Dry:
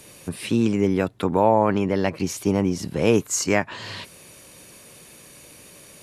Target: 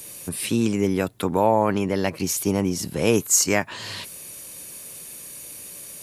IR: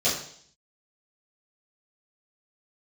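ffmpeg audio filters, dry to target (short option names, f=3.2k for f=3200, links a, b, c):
-af "aemphasis=mode=production:type=50fm,volume=-1dB"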